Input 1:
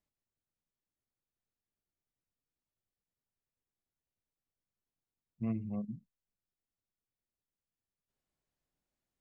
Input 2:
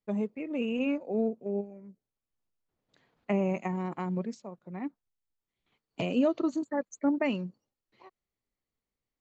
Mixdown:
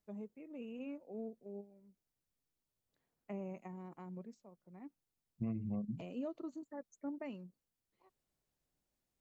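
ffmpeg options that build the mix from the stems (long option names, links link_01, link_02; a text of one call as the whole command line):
ffmpeg -i stem1.wav -i stem2.wav -filter_complex "[0:a]equalizer=frequency=1800:width=0.55:gain=-3.5,acompressor=threshold=-38dB:ratio=6,volume=3dB[link_01];[1:a]equalizer=frequency=3000:width=0.5:gain=-5,volume=-15.5dB[link_02];[link_01][link_02]amix=inputs=2:normalize=0" out.wav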